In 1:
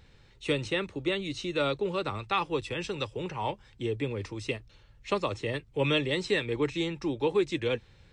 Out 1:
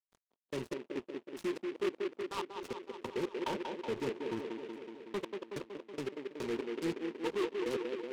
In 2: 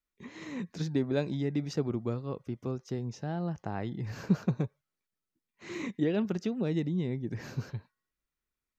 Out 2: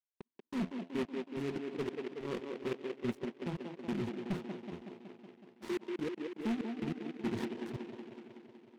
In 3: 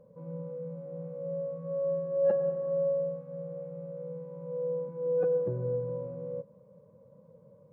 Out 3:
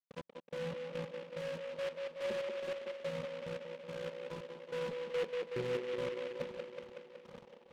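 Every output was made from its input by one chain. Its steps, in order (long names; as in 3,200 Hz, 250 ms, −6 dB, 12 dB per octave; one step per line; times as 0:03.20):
low-shelf EQ 280 Hz −8 dB
hum removal 85.28 Hz, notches 9
reversed playback
downward compressor 6 to 1, threshold −47 dBFS
reversed playback
hollow resonant body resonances 230/360/940 Hz, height 17 dB, ringing for 50 ms
pitch vibrato 0.54 Hz 13 cents
dead-zone distortion −51 dBFS
gate pattern ".x...xx." 143 BPM −60 dB
hard clipping −36.5 dBFS
high-frequency loss of the air 64 metres
on a send: delay with a band-pass on its return 186 ms, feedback 70%, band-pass 480 Hz, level −3 dB
on the sum: short delay modulated by noise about 1,900 Hz, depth 0.078 ms
level +6.5 dB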